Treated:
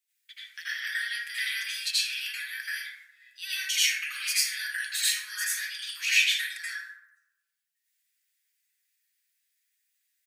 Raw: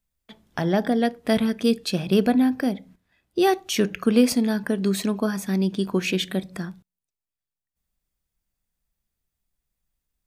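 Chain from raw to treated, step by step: comb 6.5 ms, depth 40%; limiter -19 dBFS, peak gain reduction 11.5 dB; steep high-pass 1700 Hz 48 dB/oct; reverb RT60 0.95 s, pre-delay 72 ms, DRR -11 dB

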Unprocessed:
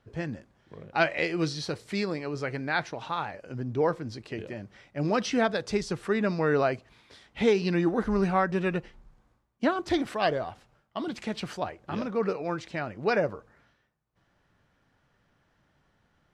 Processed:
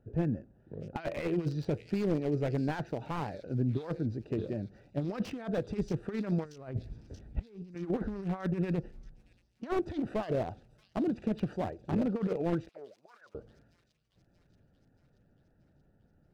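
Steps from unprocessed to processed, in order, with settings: Wiener smoothing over 41 samples; 6.45–7.75 RIAA curve playback; negative-ratio compressor -31 dBFS, ratio -0.5; 12.69–13.35 auto-wah 430–5000 Hz, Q 16, down, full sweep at -27 dBFS; thin delay 0.63 s, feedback 61%, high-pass 5100 Hz, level -11 dB; slew limiter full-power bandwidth 27 Hz

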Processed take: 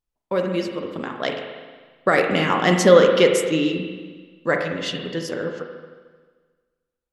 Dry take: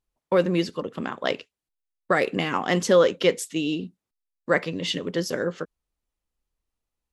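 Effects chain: Doppler pass-by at 2.88, 7 m/s, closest 8.6 m; spring tank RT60 1.5 s, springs 37/44 ms, chirp 40 ms, DRR 3 dB; gain +4.5 dB

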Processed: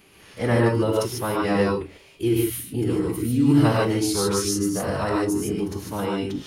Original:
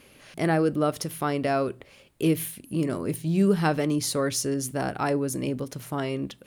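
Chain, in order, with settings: formant-preserving pitch shift -5.5 st; non-linear reverb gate 0.17 s rising, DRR -2.5 dB

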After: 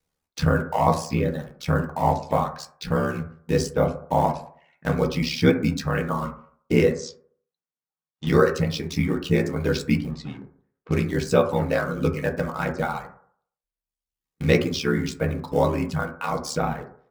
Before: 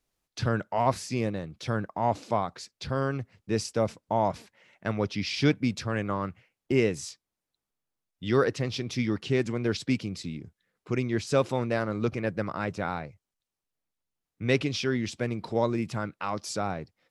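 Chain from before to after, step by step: in parallel at -6.5 dB: bit-crush 6-bit; on the sum: reverb removal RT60 1.1 s; 6.92–8.27 elliptic band-pass 120–6500 Hz; 10.11–11.04 low-pass opened by the level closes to 2200 Hz, open at -23.5 dBFS; ring modulator 36 Hz; on a send at -2 dB: reverb RT60 0.55 s, pre-delay 3 ms; on the sum: gain +3 dB

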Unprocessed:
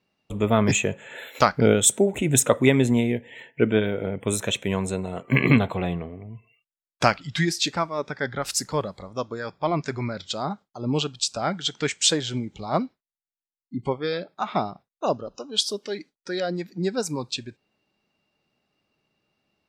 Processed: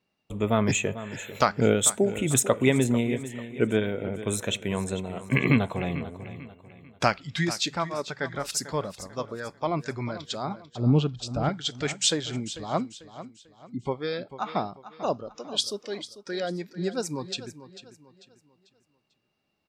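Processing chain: 10.64–11.49 RIAA curve playback; feedback echo 0.444 s, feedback 37%, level -14 dB; gain -3.5 dB

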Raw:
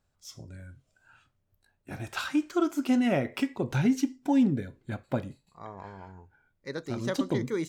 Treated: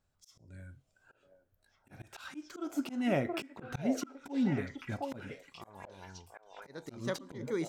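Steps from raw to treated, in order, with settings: delay with a stepping band-pass 0.724 s, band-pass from 610 Hz, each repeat 1.4 oct, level -1 dB; auto swell 0.209 s; gain -3.5 dB

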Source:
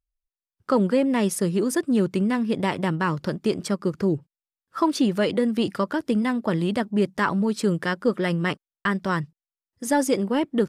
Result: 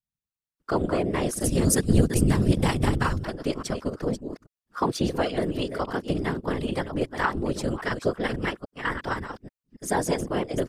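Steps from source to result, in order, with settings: reverse delay 0.279 s, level -8.5 dB; low shelf 130 Hz -11.5 dB; ring modulator 80 Hz; whisperiser; 1.44–3.24 tone controls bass +11 dB, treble +12 dB

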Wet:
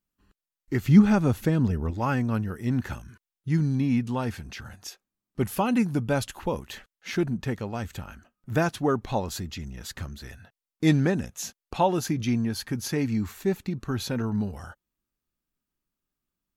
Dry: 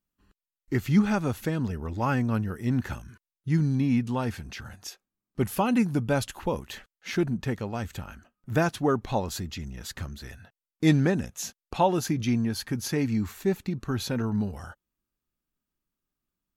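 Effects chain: 0.84–1.91 low shelf 500 Hz +6.5 dB

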